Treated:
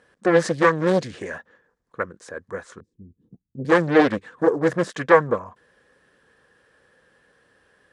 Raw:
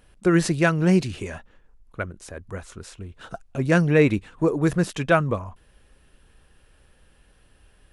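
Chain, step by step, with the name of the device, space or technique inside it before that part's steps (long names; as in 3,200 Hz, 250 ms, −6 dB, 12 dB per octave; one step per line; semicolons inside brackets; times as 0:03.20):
0:02.80–0:03.65: inverse Chebyshev low-pass filter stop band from 560 Hz, stop band 40 dB
full-range speaker at full volume (highs frequency-modulated by the lows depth 0.97 ms; loudspeaker in its box 160–8,700 Hz, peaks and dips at 490 Hz +9 dB, 1,100 Hz +5 dB, 1,700 Hz +10 dB, 2,700 Hz −6 dB)
level −1.5 dB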